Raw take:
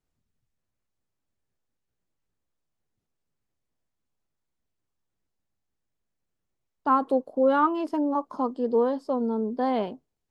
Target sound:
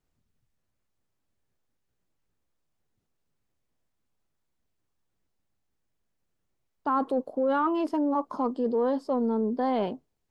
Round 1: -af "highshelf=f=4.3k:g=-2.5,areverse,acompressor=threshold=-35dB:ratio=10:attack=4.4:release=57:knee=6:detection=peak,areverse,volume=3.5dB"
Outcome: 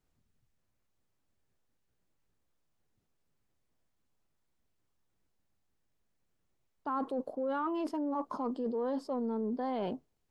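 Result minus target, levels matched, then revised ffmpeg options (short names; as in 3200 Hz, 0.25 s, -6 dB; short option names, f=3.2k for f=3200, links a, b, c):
compressor: peak gain reduction +8.5 dB
-af "highshelf=f=4.3k:g=-2.5,areverse,acompressor=threshold=-25.5dB:ratio=10:attack=4.4:release=57:knee=6:detection=peak,areverse,volume=3.5dB"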